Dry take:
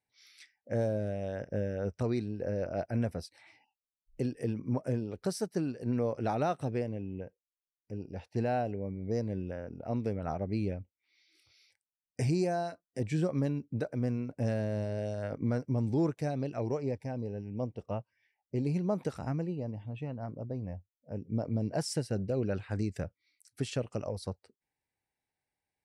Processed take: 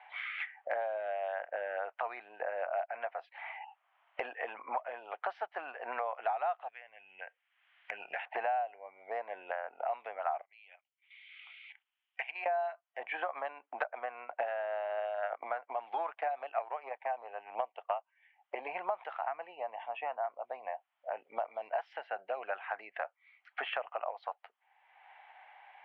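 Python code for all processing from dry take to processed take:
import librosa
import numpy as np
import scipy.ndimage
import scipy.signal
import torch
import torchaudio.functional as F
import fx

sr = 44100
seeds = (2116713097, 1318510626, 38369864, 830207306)

y = fx.chain(x, sr, fx.band_shelf(hz=520.0, db=-15.5, octaves=2.8),
    fx.band_squash(depth_pct=40), at=(6.68, 8.26))
y = fx.chain(y, sr, fx.bandpass_q(hz=3200.0, q=2.3),
    fx.level_steps(step_db=13), at=(10.41, 12.46))
y = fx.chain(y, sr, fx.transient(attack_db=9, sustain_db=-1),
    fx.highpass(hz=190.0, slope=12), at=(13.12, 18.55))
y = scipy.signal.sosfilt(scipy.signal.cheby1(4, 1.0, [710.0, 3200.0], 'bandpass', fs=sr, output='sos'), y)
y = fx.tilt_eq(y, sr, slope=-4.0)
y = fx.band_squash(y, sr, depth_pct=100)
y = F.gain(torch.from_numpy(y), 8.5).numpy()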